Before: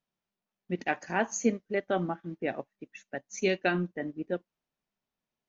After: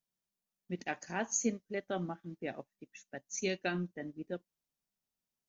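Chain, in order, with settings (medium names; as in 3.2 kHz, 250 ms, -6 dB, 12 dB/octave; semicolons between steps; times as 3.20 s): tone controls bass +4 dB, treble +12 dB; trim -8.5 dB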